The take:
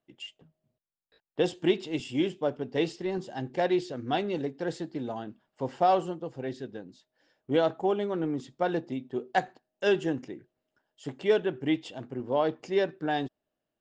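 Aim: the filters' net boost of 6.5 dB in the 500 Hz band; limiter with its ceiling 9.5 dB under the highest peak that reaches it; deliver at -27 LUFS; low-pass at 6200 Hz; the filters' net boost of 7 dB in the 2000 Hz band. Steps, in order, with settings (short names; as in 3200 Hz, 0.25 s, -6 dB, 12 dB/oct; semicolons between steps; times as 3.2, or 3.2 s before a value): LPF 6200 Hz; bell 500 Hz +8 dB; bell 2000 Hz +8.5 dB; gain +1 dB; limiter -14.5 dBFS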